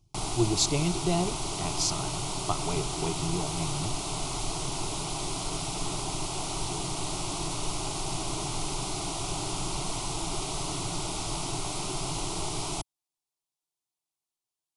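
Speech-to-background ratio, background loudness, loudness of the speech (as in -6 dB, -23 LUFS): 1.5 dB, -32.5 LUFS, -31.0 LUFS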